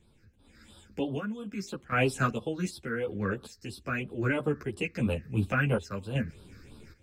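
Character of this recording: phasing stages 6, 3 Hz, lowest notch 800–1900 Hz; random-step tremolo 2.6 Hz, depth 80%; a shimmering, thickened sound

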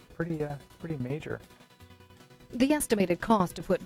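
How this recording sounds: a quantiser's noise floor 12-bit, dither triangular; tremolo saw down 10 Hz, depth 85%; AAC

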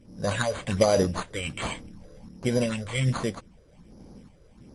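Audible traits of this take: phasing stages 6, 1.3 Hz, lowest notch 220–3600 Hz; random-step tremolo; aliases and images of a low sample rate 5400 Hz, jitter 0%; MP3

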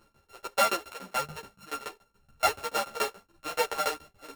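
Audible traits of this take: a buzz of ramps at a fixed pitch in blocks of 32 samples; tremolo saw down 7 Hz, depth 100%; a shimmering, thickened sound

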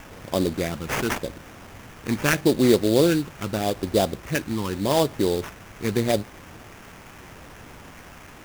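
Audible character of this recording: a quantiser's noise floor 8-bit, dither triangular; phasing stages 12, 0.82 Hz, lowest notch 550–3200 Hz; aliases and images of a low sample rate 4200 Hz, jitter 20%

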